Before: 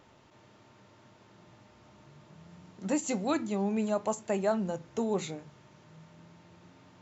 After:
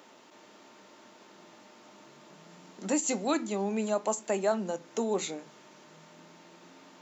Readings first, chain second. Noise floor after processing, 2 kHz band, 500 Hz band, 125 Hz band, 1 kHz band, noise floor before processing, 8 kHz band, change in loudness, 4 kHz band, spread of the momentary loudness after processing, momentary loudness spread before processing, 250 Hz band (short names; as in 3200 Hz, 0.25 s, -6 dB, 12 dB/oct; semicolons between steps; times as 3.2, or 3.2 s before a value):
-56 dBFS, +2.0 dB, +1.5 dB, -4.5 dB, +1.5 dB, -60 dBFS, n/a, +1.0 dB, +4.0 dB, 7 LU, 7 LU, -1.0 dB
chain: HPF 220 Hz 24 dB/oct; high shelf 5600 Hz +8 dB; in parallel at -3 dB: compressor, threshold -42 dBFS, peak gain reduction 17.5 dB